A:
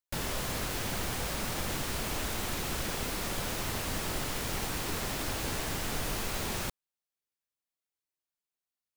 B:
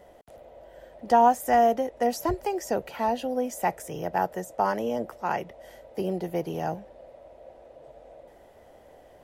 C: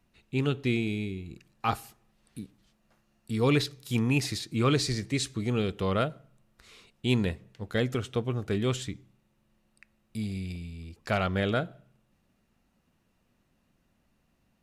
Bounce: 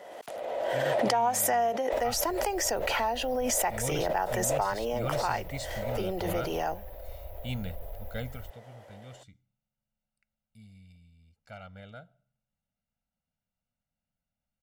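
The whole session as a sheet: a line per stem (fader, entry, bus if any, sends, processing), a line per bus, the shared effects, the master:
−7.0 dB, 1.80 s, no send, inverse Chebyshev band-stop filter 180–8,100 Hz, stop band 40 dB; high-shelf EQ 11,000 Hz −7 dB; comb filter 2.7 ms, depth 97%
+1.5 dB, 0.00 s, no send, meter weighting curve A; background raised ahead of every attack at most 28 dB per second
0:08.26 −11 dB → 0:08.57 −22.5 dB, 0.40 s, no send, comb filter 1.4 ms, depth 95%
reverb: not used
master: downward compressor 2.5 to 1, threshold −26 dBFS, peak gain reduction 8.5 dB

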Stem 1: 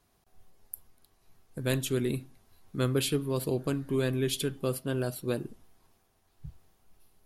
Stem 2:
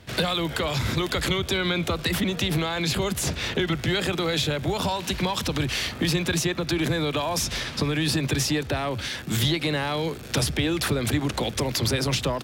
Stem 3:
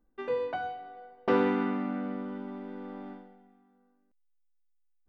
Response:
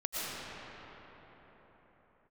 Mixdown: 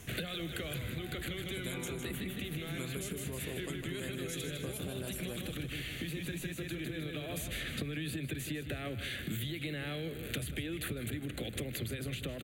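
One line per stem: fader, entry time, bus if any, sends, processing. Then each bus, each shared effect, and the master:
0:06.46 −9.5 dB → 0:06.75 −21 dB, 0.00 s, no send, echo send −8.5 dB, high shelf with overshoot 5,200 Hz +7.5 dB, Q 3; multiband upward and downward compressor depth 70%
−1.0 dB, 0.00 s, no send, echo send −13.5 dB, high-shelf EQ 11,000 Hz +6 dB; phaser with its sweep stopped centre 2,300 Hz, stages 4; automatic ducking −10 dB, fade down 1.55 s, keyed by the first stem
−17.5 dB, 0.45 s, no send, no echo send, no processing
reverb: not used
echo: repeating echo 155 ms, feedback 41%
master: downward compressor 10 to 1, threshold −35 dBFS, peak gain reduction 14.5 dB

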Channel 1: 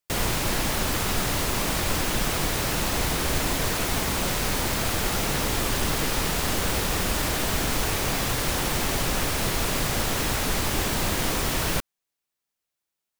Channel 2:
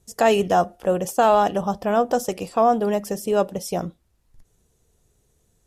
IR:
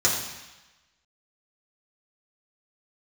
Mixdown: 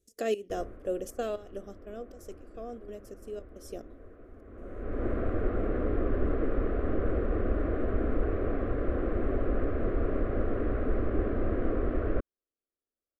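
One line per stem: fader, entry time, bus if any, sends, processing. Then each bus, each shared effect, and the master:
+2.0 dB, 0.40 s, no send, low-pass filter 1,200 Hz 24 dB per octave; automatic ducking −21 dB, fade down 0.90 s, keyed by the second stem
0:01.19 −13 dB → 0:01.91 −22 dB → 0:03.47 −22 dB → 0:03.87 −14 dB, 0.00 s, no send, parametric band 310 Hz +6 dB 2.6 octaves; gate pattern "x.xx..xxx.xx" 177 BPM −12 dB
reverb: not used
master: phaser with its sweep stopped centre 370 Hz, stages 4

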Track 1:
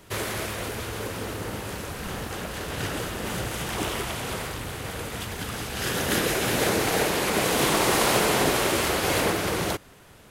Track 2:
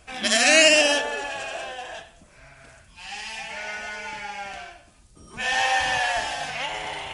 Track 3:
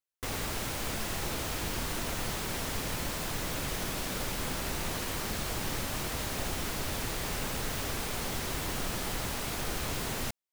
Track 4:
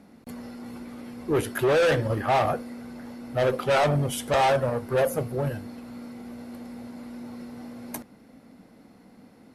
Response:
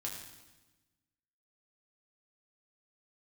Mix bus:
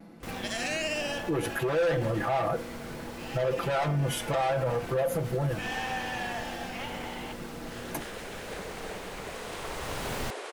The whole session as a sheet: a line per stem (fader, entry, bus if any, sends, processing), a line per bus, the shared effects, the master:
−14.0 dB, 1.90 s, no send, Chebyshev band-pass filter 420–9,300 Hz, order 3
−2.0 dB, 0.20 s, no send, downward compressor 1.5 to 1, threshold −44 dBFS, peak gain reduction 11.5 dB
+1.0 dB, 0.00 s, no send, automatic ducking −11 dB, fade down 0.45 s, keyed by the fourth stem
+1.0 dB, 0.00 s, no send, comb filter 6 ms, depth 81%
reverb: not used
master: high-shelf EQ 3,600 Hz −6 dB; pitch vibrato 0.63 Hz 20 cents; brickwall limiter −21 dBFS, peak gain reduction 11 dB

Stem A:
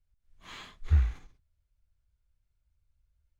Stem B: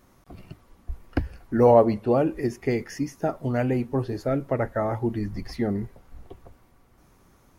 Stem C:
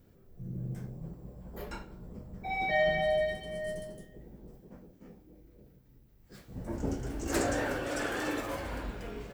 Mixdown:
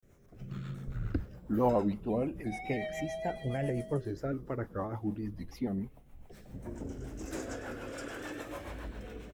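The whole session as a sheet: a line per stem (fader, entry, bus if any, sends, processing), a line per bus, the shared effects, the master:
−5.0 dB, 0.05 s, no send, echo send −8.5 dB, parametric band 1,300 Hz +14 dB 0.42 octaves; ring modulation 36 Hz; automatic ducking −10 dB, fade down 1.70 s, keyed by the second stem
−8.0 dB, 0.00 s, no send, no echo send, rippled gain that drifts along the octave scale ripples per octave 0.53, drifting −0.29 Hz, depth 7 dB; pitch modulation by a square or saw wave square 3.1 Hz, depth 100 cents
−2.0 dB, 0.00 s, no send, echo send −7.5 dB, downward compressor 2.5 to 1, threshold −36 dBFS, peak gain reduction 8.5 dB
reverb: not used
echo: single-tap delay 95 ms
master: notch filter 4,500 Hz, Q 10; rotating-speaker cabinet horn 7 Hz; pitch vibrato 0.36 Hz 97 cents

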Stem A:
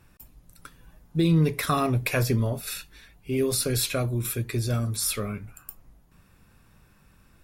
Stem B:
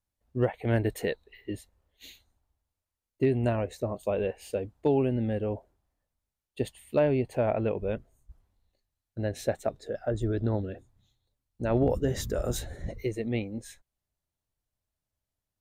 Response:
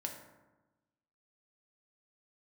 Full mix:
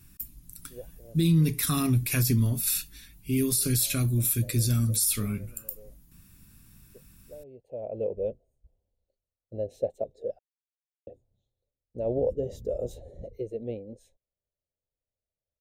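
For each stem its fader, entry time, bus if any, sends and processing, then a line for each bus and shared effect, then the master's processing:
+2.5 dB, 0.00 s, no send, drawn EQ curve 280 Hz 0 dB, 530 Hz −17 dB, 13,000 Hz +10 dB
−8.0 dB, 0.35 s, muted 0:10.39–0:11.07, no send, drawn EQ curve 320 Hz 0 dB, 520 Hz +12 dB, 1,500 Hz −24 dB, 2,800 Hz −8 dB; automatic ducking −21 dB, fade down 1.00 s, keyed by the first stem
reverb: not used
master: brickwall limiter −15.5 dBFS, peak gain reduction 11 dB

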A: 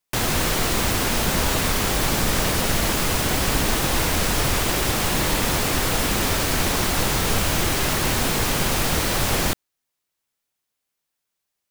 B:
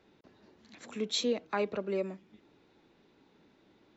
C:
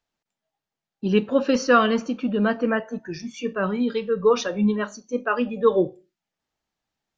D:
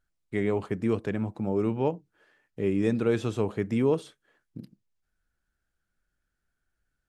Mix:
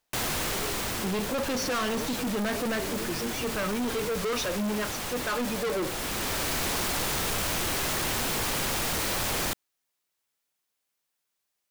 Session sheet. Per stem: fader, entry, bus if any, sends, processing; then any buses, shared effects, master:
−0.5 dB, 0.00 s, no send, automatic ducking −10 dB, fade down 1.30 s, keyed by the third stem
−5.0 dB, 0.95 s, no send, no processing
+2.5 dB, 0.00 s, no send, no processing
−9.0 dB, 0.15 s, no send, no processing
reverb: not used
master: low-shelf EQ 230 Hz −6 dB; hard clipping −27 dBFS, distortion −3 dB

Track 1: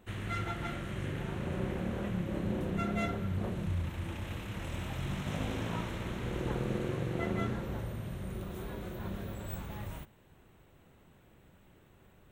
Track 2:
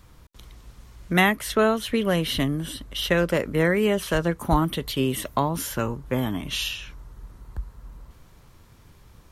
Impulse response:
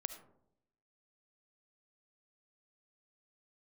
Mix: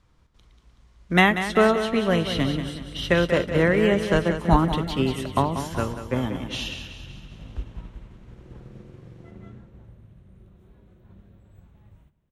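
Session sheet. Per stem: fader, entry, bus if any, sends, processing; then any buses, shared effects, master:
−10.5 dB, 2.05 s, send −4.5 dB, echo send −19.5 dB, low-shelf EQ 280 Hz +11 dB
+0.5 dB, 0.00 s, send −7 dB, echo send −4.5 dB, low-pass filter 9,500 Hz 12 dB per octave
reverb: on, RT60 0.75 s, pre-delay 30 ms
echo: repeating echo 188 ms, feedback 55%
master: high-shelf EQ 9,700 Hz −11 dB; expander for the loud parts 1.5 to 1, over −39 dBFS

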